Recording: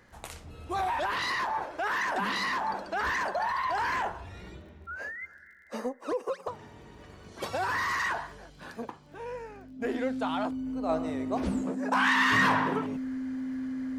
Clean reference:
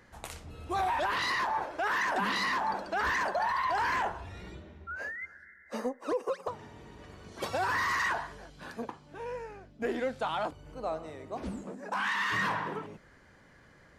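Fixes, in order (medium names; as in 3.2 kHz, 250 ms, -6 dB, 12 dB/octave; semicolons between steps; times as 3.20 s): de-click; band-stop 260 Hz, Q 30; trim 0 dB, from 10.89 s -6.5 dB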